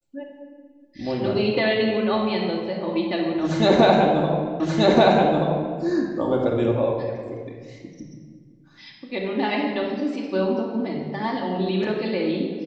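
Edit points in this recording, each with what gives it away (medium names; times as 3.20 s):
4.60 s: repeat of the last 1.18 s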